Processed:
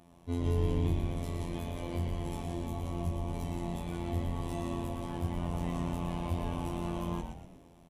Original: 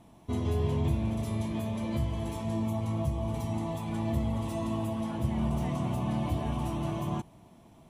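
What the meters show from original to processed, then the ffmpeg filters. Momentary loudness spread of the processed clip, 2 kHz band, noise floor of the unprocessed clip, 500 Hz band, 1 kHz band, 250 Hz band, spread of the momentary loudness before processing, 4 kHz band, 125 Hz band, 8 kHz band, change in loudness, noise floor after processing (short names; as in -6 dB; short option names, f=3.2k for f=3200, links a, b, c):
7 LU, -2.0 dB, -56 dBFS, -3.0 dB, -3.0 dB, -4.5 dB, 4 LU, -2.0 dB, -3.5 dB, -2.5 dB, -3.5 dB, -58 dBFS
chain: -filter_complex "[0:a]afftfilt=real='hypot(re,im)*cos(PI*b)':imag='0':win_size=2048:overlap=0.75,aresample=32000,aresample=44100,asplit=6[a][b][c][d][e][f];[b]adelay=117,afreqshift=-120,volume=-5.5dB[g];[c]adelay=234,afreqshift=-240,volume=-12.6dB[h];[d]adelay=351,afreqshift=-360,volume=-19.8dB[i];[e]adelay=468,afreqshift=-480,volume=-26.9dB[j];[f]adelay=585,afreqshift=-600,volume=-34dB[k];[a][g][h][i][j][k]amix=inputs=6:normalize=0"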